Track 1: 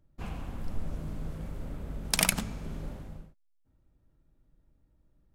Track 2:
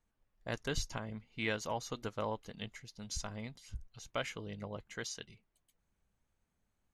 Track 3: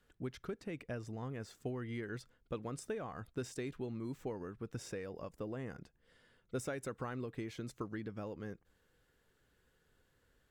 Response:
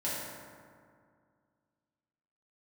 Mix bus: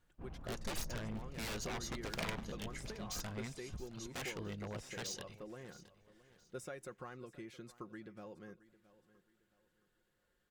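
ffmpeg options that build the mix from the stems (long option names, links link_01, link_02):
-filter_complex "[0:a]equalizer=frequency=9700:width=0.73:gain=-12,adynamicsmooth=sensitivity=4:basefreq=1200,volume=-12dB,asplit=2[link_01][link_02];[link_02]volume=-17dB[link_03];[1:a]aeval=exprs='0.0126*(abs(mod(val(0)/0.0126+3,4)-2)-1)':channel_layout=same,volume=1dB,asplit=2[link_04][link_05];[link_05]volume=-18dB[link_06];[2:a]lowshelf=frequency=270:gain=-5,aecho=1:1:5.6:0.46,volume=-6.5dB,asplit=2[link_07][link_08];[link_08]volume=-18dB[link_09];[link_03][link_06][link_09]amix=inputs=3:normalize=0,aecho=0:1:669|1338|2007|2676|3345:1|0.33|0.109|0.0359|0.0119[link_10];[link_01][link_04][link_07][link_10]amix=inputs=4:normalize=0"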